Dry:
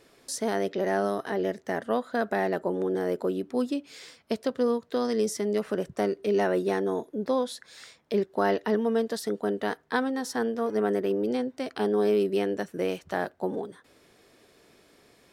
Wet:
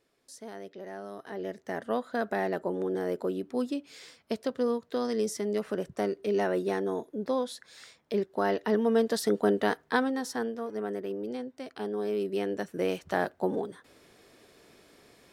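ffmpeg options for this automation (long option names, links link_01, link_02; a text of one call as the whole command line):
ffmpeg -i in.wav -af "volume=13dB,afade=type=in:start_time=1.06:duration=0.88:silence=0.251189,afade=type=in:start_time=8.53:duration=0.86:silence=0.446684,afade=type=out:start_time=9.39:duration=1.28:silence=0.251189,afade=type=in:start_time=12.07:duration=1.06:silence=0.354813" out.wav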